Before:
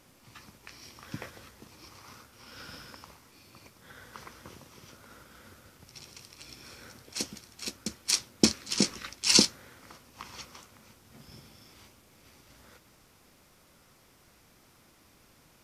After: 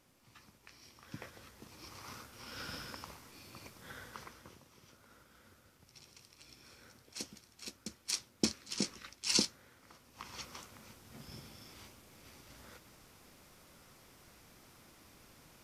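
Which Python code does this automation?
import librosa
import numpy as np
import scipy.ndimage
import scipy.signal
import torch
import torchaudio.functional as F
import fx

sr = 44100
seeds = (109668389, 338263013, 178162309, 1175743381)

y = fx.gain(x, sr, db=fx.line((1.01, -9.0), (2.07, 1.5), (3.93, 1.5), (4.61, -9.5), (9.83, -9.5), (10.57, 0.5)))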